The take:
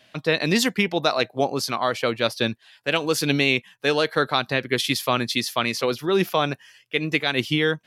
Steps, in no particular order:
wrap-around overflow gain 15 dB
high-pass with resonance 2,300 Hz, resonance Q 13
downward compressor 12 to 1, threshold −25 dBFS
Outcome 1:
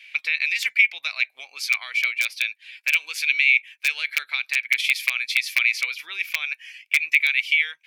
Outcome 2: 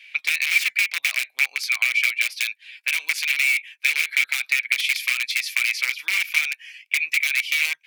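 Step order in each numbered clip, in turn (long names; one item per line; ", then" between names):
downward compressor, then wrap-around overflow, then high-pass with resonance
wrap-around overflow, then downward compressor, then high-pass with resonance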